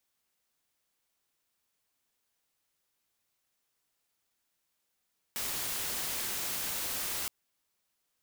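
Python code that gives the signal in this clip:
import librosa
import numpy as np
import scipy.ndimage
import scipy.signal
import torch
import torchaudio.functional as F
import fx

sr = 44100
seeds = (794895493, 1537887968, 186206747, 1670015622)

y = fx.noise_colour(sr, seeds[0], length_s=1.92, colour='white', level_db=-35.0)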